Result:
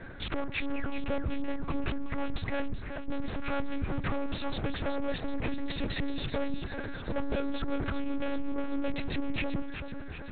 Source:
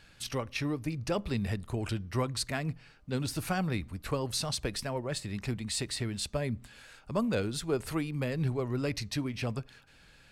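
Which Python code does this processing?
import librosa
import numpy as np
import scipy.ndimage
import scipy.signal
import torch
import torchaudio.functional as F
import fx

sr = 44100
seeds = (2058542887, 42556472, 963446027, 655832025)

p1 = fx.wiener(x, sr, points=15)
p2 = fx.over_compress(p1, sr, threshold_db=-41.0, ratio=-1.0)
p3 = p1 + (p2 * 10.0 ** (1.5 / 20.0))
p4 = 10.0 ** (-22.0 / 20.0) * (np.abs((p3 / 10.0 ** (-22.0 / 20.0) + 3.0) % 4.0 - 2.0) - 1.0)
p5 = fx.spec_paint(p4, sr, seeds[0], shape='fall', start_s=0.75, length_s=0.25, low_hz=520.0, high_hz=2900.0, level_db=-42.0)
p6 = 10.0 ** (-31.5 / 20.0) * np.tanh(p5 / 10.0 ** (-31.5 / 20.0))
p7 = fx.echo_feedback(p6, sr, ms=380, feedback_pct=56, wet_db=-8.5)
p8 = fx.lpc_monotone(p7, sr, seeds[1], pitch_hz=280.0, order=8)
y = p8 * 10.0 ** (5.0 / 20.0)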